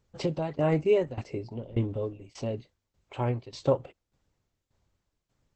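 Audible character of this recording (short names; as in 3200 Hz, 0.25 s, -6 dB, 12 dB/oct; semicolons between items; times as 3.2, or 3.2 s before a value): tremolo saw down 1.7 Hz, depth 90%; Opus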